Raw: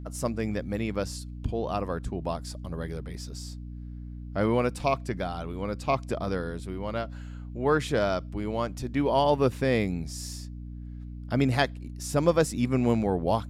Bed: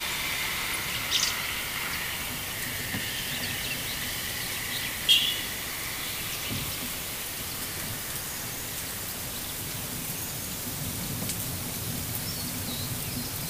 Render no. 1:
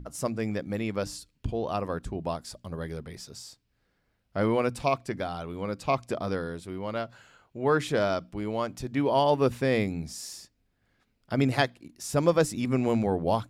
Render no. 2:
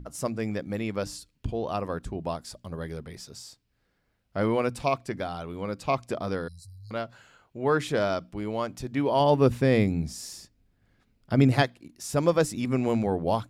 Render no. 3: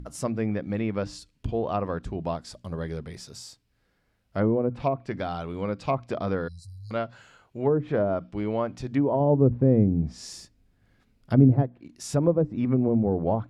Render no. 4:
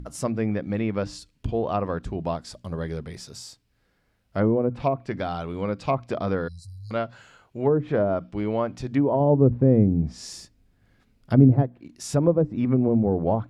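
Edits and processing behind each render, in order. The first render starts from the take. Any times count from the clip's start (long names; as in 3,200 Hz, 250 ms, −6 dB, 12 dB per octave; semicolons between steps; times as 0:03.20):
mains-hum notches 60/120/180/240/300 Hz
0:06.48–0:06.91: linear-phase brick-wall band-stop 150–3,900 Hz; 0:09.20–0:11.63: low-shelf EQ 320 Hz +7.5 dB
harmonic and percussive parts rebalanced harmonic +4 dB; treble cut that deepens with the level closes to 490 Hz, closed at −17.5 dBFS
level +2 dB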